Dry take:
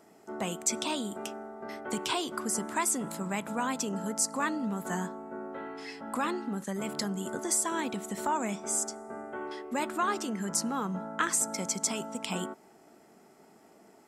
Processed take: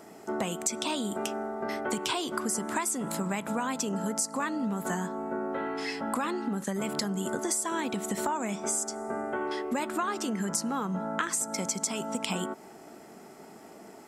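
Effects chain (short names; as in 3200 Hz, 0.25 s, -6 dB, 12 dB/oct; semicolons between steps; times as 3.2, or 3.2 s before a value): compressor 5:1, threshold -37 dBFS, peak gain reduction 13 dB; gain +9 dB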